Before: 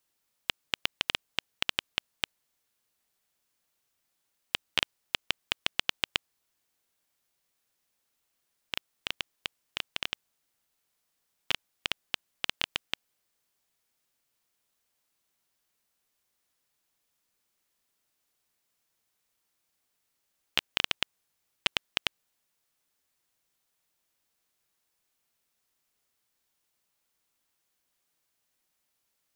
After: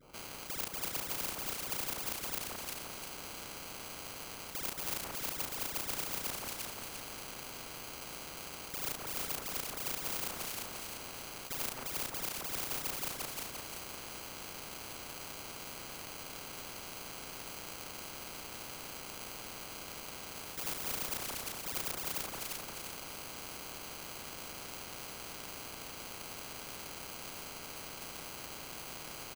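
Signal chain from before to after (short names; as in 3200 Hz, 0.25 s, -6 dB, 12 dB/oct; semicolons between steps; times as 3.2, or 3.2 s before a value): resonant high shelf 5900 Hz +11.5 dB, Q 1.5; limiter -15 dBFS, peak gain reduction 13 dB; dispersion highs, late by 0.147 s, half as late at 1900 Hz; sample-rate reducer 1800 Hz, jitter 0%; doubler 34 ms -8.5 dB; echo with dull and thin repeats by turns 0.174 s, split 1600 Hz, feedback 56%, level -6 dB; spectral compressor 4:1; gain +14.5 dB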